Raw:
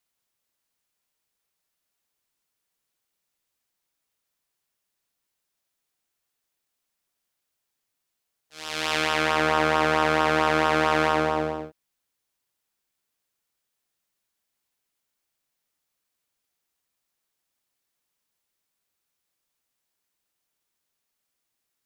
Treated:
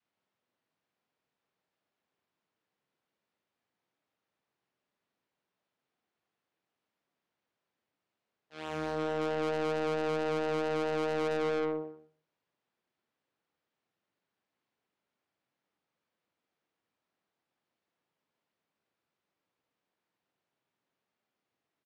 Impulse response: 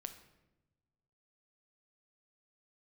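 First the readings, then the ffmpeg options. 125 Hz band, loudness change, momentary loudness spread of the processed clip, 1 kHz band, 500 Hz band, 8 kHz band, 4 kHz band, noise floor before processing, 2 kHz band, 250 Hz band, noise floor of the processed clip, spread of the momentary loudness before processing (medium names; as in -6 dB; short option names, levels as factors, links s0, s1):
-8.0 dB, -10.0 dB, 7 LU, -14.0 dB, -4.5 dB, under -15 dB, -15.5 dB, -81 dBFS, -16.0 dB, -6.5 dB, under -85 dBFS, 10 LU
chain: -filter_complex "[0:a]aecho=1:1:122|244|366:0.398|0.0995|0.0249,adynamicequalizer=threshold=0.0282:dfrequency=490:dqfactor=1.3:tfrequency=490:tqfactor=1.3:attack=5:release=100:ratio=0.375:range=2:mode=boostabove:tftype=bell,highpass=130,lowpass=3400,asplit=2[s0][s1];[1:a]atrim=start_sample=2205,afade=t=out:st=0.31:d=0.01,atrim=end_sample=14112,adelay=45[s2];[s1][s2]afir=irnorm=-1:irlink=0,volume=0.422[s3];[s0][s3]amix=inputs=2:normalize=0,alimiter=limit=0.211:level=0:latency=1:release=76,tiltshelf=f=1200:g=4.5,asoftclip=type=tanh:threshold=0.0447"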